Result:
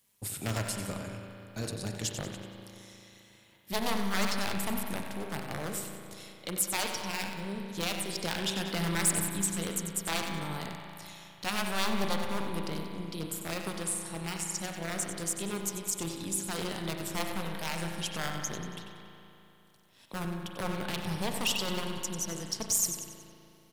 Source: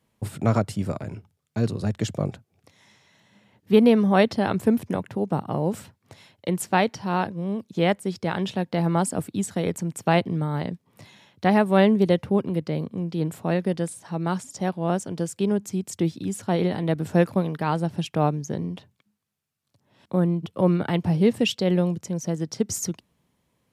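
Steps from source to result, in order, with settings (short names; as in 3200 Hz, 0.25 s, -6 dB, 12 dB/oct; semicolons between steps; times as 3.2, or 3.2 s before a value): one-sided fold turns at -17 dBFS; pre-emphasis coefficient 0.9; in parallel at -3 dB: compressor, threshold -45 dBFS, peak gain reduction 18 dB; 8.13–9.34 on the sum: sample leveller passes 1; on a send: feedback echo 93 ms, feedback 47%, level -10 dB; on the sum: soft clip -23.5 dBFS, distortion -18 dB; spring tank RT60 3 s, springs 36 ms, chirp 25 ms, DRR 3.5 dB; AM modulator 200 Hz, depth 35%; gain +6 dB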